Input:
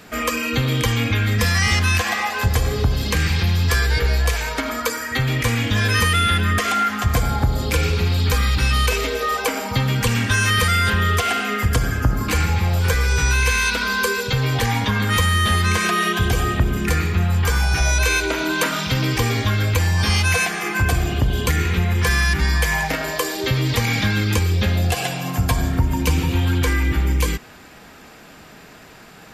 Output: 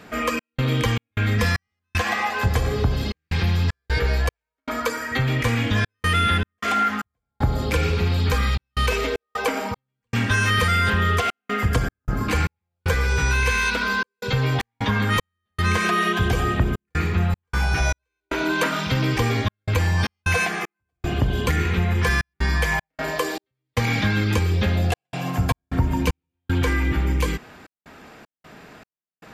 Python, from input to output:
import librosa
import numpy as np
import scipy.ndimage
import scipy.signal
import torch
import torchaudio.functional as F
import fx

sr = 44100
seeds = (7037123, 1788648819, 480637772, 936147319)

y = fx.low_shelf(x, sr, hz=67.0, db=-6.0)
y = fx.step_gate(y, sr, bpm=77, pattern='xx.xx.xx..xxxx', floor_db=-60.0, edge_ms=4.5)
y = fx.high_shelf(y, sr, hz=4100.0, db=-10.0)